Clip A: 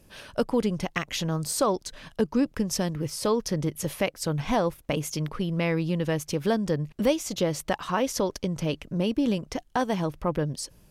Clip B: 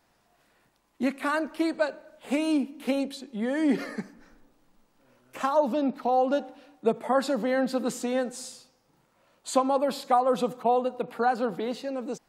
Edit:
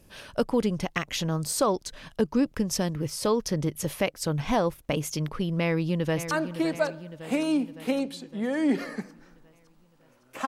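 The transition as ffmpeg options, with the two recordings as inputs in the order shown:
ffmpeg -i cue0.wav -i cue1.wav -filter_complex "[0:a]apad=whole_dur=10.47,atrim=end=10.47,atrim=end=6.312[link_01];[1:a]atrim=start=1.308:end=5.47[link_02];[link_01][link_02]acrossfade=duration=0.004:curve1=hsin:curve2=hsin,asplit=2[link_03][link_04];[link_04]afade=type=in:start_time=5.6:duration=0.01,afade=type=out:start_time=6.31:duration=0.01,aecho=0:1:560|1120|1680|2240|2800|3360|3920:0.298538|0.179123|0.107474|0.0644843|0.0386906|0.0232143|0.0139286[link_05];[link_03][link_05]amix=inputs=2:normalize=0" out.wav

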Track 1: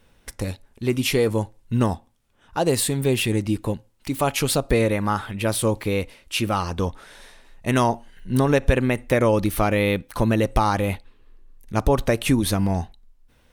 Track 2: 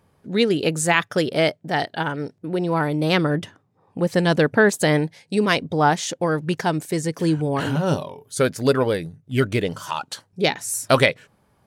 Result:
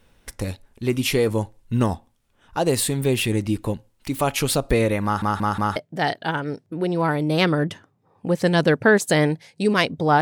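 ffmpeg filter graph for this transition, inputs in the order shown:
ffmpeg -i cue0.wav -i cue1.wav -filter_complex "[0:a]apad=whole_dur=10.21,atrim=end=10.21,asplit=4[link_01][link_02][link_03][link_04];[link_01]atrim=end=5.222[link_05];[link_02]atrim=start=5.038:end=5.222[link_06];[link_03]atrim=start=5.038:end=5.222[link_07];[link_04]atrim=start=5.038:end=5.222[link_08];[1:a]atrim=start=1.478:end=5.93[link_09];[link_05][link_06]acrossfade=duration=0.004:curve1=hsin:curve2=hsin[link_10];[link_10][link_07]acrossfade=duration=0.004:curve1=hsin:curve2=hsin[link_11];[link_11][link_08]acrossfade=duration=0.004:curve1=hsin:curve2=hsin[link_12];[link_12][link_09]acrossfade=duration=0.004:curve1=hsin:curve2=hsin" out.wav

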